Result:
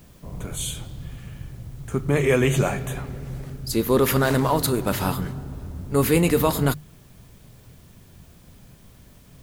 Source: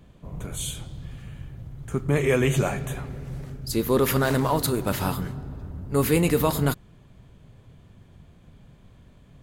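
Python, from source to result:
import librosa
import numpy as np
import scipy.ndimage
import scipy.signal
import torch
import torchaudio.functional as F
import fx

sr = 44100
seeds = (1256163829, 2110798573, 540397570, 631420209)

p1 = fx.hum_notches(x, sr, base_hz=50, count=3)
p2 = fx.quant_dither(p1, sr, seeds[0], bits=8, dither='triangular')
y = p1 + (p2 * librosa.db_to_amplitude(-10.5))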